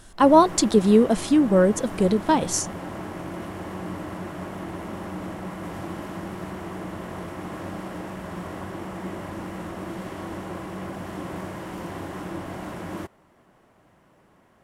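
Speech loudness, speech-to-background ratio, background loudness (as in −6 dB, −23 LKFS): −19.5 LKFS, 15.0 dB, −34.5 LKFS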